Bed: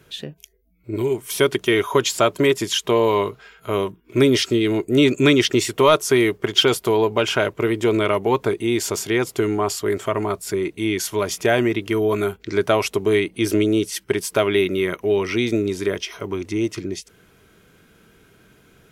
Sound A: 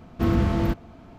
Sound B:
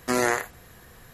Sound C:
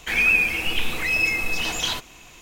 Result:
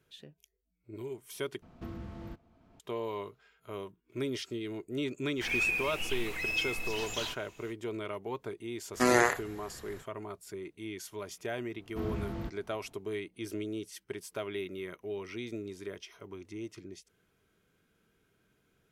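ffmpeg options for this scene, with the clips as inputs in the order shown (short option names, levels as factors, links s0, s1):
-filter_complex "[1:a]asplit=2[s0][s1];[0:a]volume=0.112[s2];[s0]acompressor=threshold=0.00891:ratio=2:attack=97:release=520:knee=1:detection=rms[s3];[2:a]highshelf=f=11000:g=-11.5[s4];[s2]asplit=2[s5][s6];[s5]atrim=end=1.624[s7];[s3]atrim=end=1.18,asetpts=PTS-STARTPTS,volume=0.316[s8];[s6]atrim=start=2.796[s9];[3:a]atrim=end=2.41,asetpts=PTS-STARTPTS,volume=0.251,afade=t=in:d=0.05,afade=t=out:st=2.36:d=0.05,adelay=5340[s10];[s4]atrim=end=1.13,asetpts=PTS-STARTPTS,volume=0.891,afade=t=in:d=0.05,afade=t=out:st=1.08:d=0.05,adelay=8920[s11];[s1]atrim=end=1.18,asetpts=PTS-STARTPTS,volume=0.178,afade=t=in:d=0.004:c=hsin,afade=t=out:st=1.176:d=0.004:c=hsin,adelay=11760[s12];[s7][s8]acrossfade=d=0.004:c1=hsin:c2=hsin[s13];[s13][s9]acrossfade=d=0.004:c1=hsin:c2=hsin[s14];[s14][s10][s11][s12]amix=inputs=4:normalize=0"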